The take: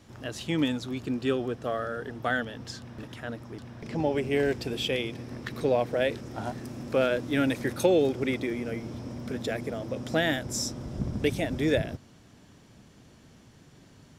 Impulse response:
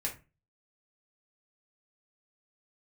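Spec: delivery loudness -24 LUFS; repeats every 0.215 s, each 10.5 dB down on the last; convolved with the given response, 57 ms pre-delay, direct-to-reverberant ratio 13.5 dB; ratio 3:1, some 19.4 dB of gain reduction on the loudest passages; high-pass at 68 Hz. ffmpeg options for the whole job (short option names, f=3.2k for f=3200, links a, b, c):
-filter_complex "[0:a]highpass=68,acompressor=threshold=-46dB:ratio=3,aecho=1:1:215|430|645:0.299|0.0896|0.0269,asplit=2[a][b];[1:a]atrim=start_sample=2205,adelay=57[c];[b][c]afir=irnorm=-1:irlink=0,volume=-16.5dB[d];[a][d]amix=inputs=2:normalize=0,volume=21dB"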